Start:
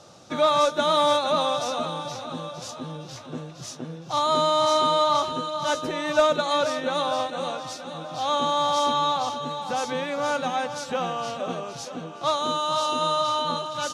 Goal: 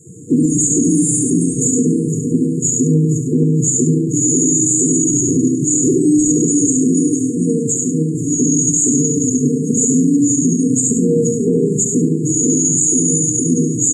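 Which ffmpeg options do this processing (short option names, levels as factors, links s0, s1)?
-filter_complex "[0:a]asplit=2[s0][s1];[s1]aecho=0:1:70|140|210|280|350|420|490:0.668|0.341|0.174|0.0887|0.0452|0.0231|0.0118[s2];[s0][s2]amix=inputs=2:normalize=0,afftdn=nr=16:nf=-41,aeval=exprs='0.501*(cos(1*acos(clip(val(0)/0.501,-1,1)))-cos(1*PI/2))+0.00891*(cos(4*acos(clip(val(0)/0.501,-1,1)))-cos(4*PI/2))':c=same,highpass=f=85:p=1,highshelf=f=5200:t=q:w=3:g=13,asplit=2[s3][s4];[s4]aecho=0:1:101:0.335[s5];[s3][s5]amix=inputs=2:normalize=0,afftfilt=real='re*(1-between(b*sr/4096,480,6600))':imag='im*(1-between(b*sr/4096,480,6600))':win_size=4096:overlap=0.75,aemphasis=mode=reproduction:type=50kf,alimiter=level_in=22.4:limit=0.891:release=50:level=0:latency=1,volume=0.596"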